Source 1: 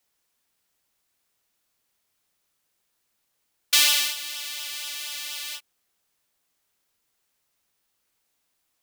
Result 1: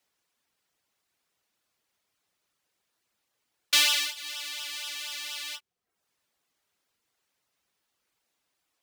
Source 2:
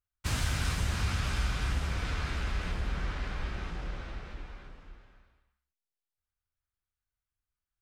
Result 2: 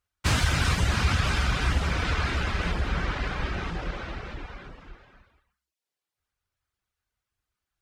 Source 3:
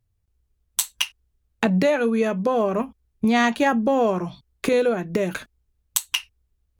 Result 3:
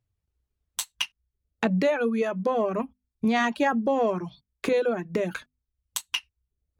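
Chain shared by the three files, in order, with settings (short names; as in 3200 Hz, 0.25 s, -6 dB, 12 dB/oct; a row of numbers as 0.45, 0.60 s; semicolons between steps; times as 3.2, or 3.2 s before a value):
soft clip -6 dBFS; HPF 65 Hz 6 dB/oct; high shelf 8100 Hz -9.5 dB; notches 50/100/150/200/250 Hz; reverb removal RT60 0.57 s; match loudness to -27 LUFS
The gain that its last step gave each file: +1.0, +11.0, -2.5 dB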